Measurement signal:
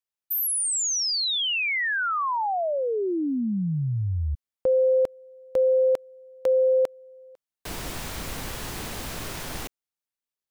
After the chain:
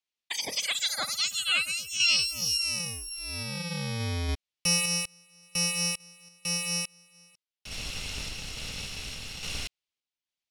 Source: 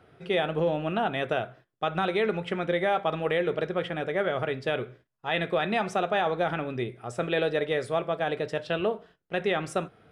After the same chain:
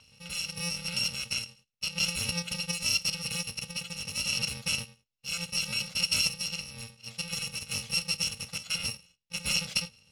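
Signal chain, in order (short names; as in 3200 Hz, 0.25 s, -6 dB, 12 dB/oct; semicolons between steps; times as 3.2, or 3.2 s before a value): FFT order left unsorted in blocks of 128 samples; LPF 5000 Hz 12 dB/oct; resonant high shelf 2000 Hz +7 dB, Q 1.5; random-step tremolo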